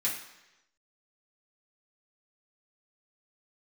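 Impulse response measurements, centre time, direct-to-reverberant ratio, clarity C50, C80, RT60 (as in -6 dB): 34 ms, -7.0 dB, 5.5 dB, 8.5 dB, 1.0 s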